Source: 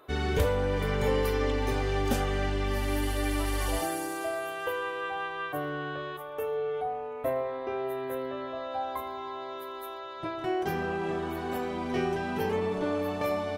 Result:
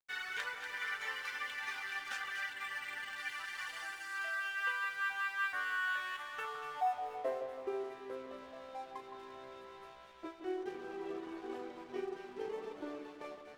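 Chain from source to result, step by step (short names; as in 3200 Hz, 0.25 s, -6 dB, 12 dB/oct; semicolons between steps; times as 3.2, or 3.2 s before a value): weighting filter ITU-R 468; reverb removal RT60 0.94 s; dynamic EQ 610 Hz, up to -5 dB, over -49 dBFS, Q 2.5; vocal rider within 5 dB 0.5 s; band-pass sweep 1600 Hz -> 370 Hz, 6.31–7.4; crossover distortion -56.5 dBFS; on a send: split-band echo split 1700 Hz, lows 0.164 s, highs 0.24 s, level -8 dB; 2.53–3.18 on the sum: decimation joined by straight lines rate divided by 4×; gain +2.5 dB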